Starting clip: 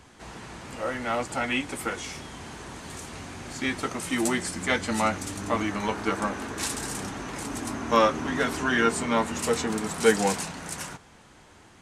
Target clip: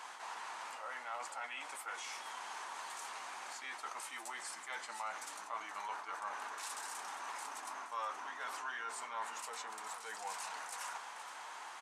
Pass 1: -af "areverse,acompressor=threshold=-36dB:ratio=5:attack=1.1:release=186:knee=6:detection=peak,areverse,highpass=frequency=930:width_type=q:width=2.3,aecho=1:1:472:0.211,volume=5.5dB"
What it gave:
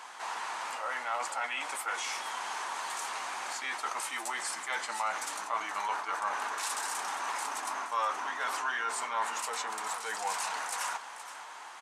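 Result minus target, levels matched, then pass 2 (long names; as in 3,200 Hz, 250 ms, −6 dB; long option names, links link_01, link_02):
downward compressor: peak gain reduction −9.5 dB
-af "areverse,acompressor=threshold=-48dB:ratio=5:attack=1.1:release=186:knee=6:detection=peak,areverse,highpass=frequency=930:width_type=q:width=2.3,aecho=1:1:472:0.211,volume=5.5dB"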